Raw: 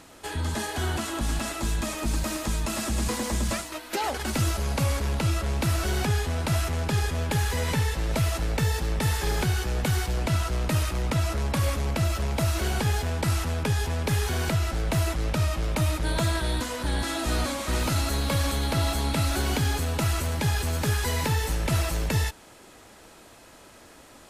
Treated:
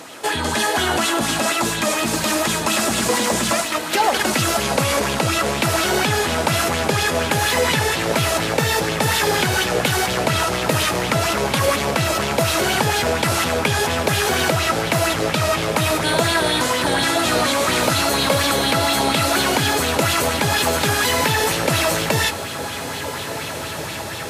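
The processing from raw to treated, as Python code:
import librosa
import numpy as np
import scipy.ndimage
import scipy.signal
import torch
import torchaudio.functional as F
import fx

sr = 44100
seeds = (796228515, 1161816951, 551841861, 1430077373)

p1 = scipy.signal.sosfilt(scipy.signal.butter(4, 98.0, 'highpass', fs=sr, output='sos'), x)
p2 = fx.low_shelf(p1, sr, hz=170.0, db=-9.5)
p3 = fx.over_compress(p2, sr, threshold_db=-33.0, ratio=-1.0)
p4 = p2 + (p3 * librosa.db_to_amplitude(-3.0))
p5 = fx.wow_flutter(p4, sr, seeds[0], rate_hz=2.1, depth_cents=26.0)
p6 = p5 + fx.echo_diffused(p5, sr, ms=1947, feedback_pct=61, wet_db=-11, dry=0)
p7 = fx.bell_lfo(p6, sr, hz=4.2, low_hz=460.0, high_hz=3600.0, db=7)
y = p7 * librosa.db_to_amplitude(6.5)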